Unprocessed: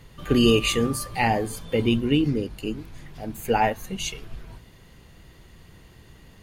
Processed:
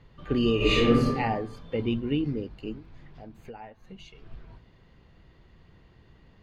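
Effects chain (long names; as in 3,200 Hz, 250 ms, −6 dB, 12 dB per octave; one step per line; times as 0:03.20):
0:02.77–0:04.26: downward compressor 8 to 1, threshold −35 dBFS, peak gain reduction 17.5 dB
drawn EQ curve 1,100 Hz 0 dB, 4,600 Hz −6 dB, 9,700 Hz −25 dB
0:00.56–0:01.08: thrown reverb, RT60 0.98 s, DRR −10 dB
level −6 dB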